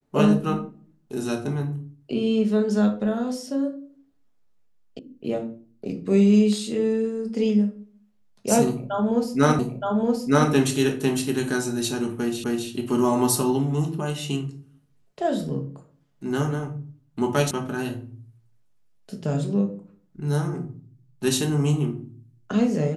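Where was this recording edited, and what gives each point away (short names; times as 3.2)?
4.99 sound cut off
9.59 repeat of the last 0.92 s
12.44 repeat of the last 0.26 s
17.51 sound cut off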